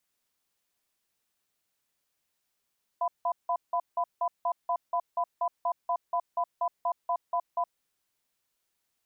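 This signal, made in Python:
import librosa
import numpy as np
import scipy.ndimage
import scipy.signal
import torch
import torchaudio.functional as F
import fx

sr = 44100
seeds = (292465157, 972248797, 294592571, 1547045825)

y = fx.cadence(sr, length_s=4.7, low_hz=695.0, high_hz=1000.0, on_s=0.07, off_s=0.17, level_db=-27.5)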